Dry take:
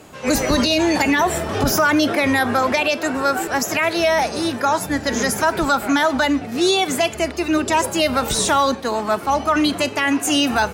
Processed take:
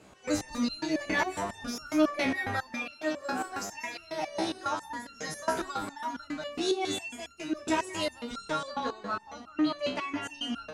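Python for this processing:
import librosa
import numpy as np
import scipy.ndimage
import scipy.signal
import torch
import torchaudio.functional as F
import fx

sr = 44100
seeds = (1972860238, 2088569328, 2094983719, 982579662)

y = fx.lowpass(x, sr, hz=fx.steps((0.0, 9000.0), (8.03, 4700.0)), slope=12)
y = y + 10.0 ** (-6.0 / 20.0) * np.pad(y, (int(186 * sr / 1000.0), 0))[:len(y)]
y = fx.resonator_held(y, sr, hz=7.3, low_hz=64.0, high_hz=1400.0)
y = y * librosa.db_to_amplitude(-3.0)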